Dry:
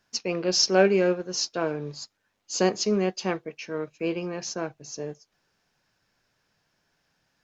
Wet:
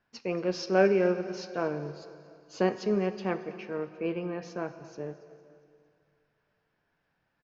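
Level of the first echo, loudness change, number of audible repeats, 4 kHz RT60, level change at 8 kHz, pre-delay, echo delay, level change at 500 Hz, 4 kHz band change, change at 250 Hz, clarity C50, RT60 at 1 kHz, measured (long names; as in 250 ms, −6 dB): −20.0 dB, −4.5 dB, 3, 2.1 s, can't be measured, 6 ms, 229 ms, −3.0 dB, −15.5 dB, −3.0 dB, 11.5 dB, 2.3 s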